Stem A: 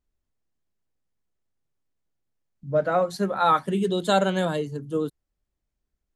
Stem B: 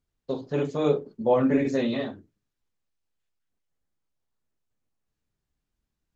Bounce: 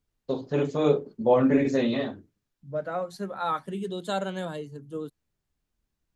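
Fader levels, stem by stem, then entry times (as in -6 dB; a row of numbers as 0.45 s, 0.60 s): -8.5 dB, +1.0 dB; 0.00 s, 0.00 s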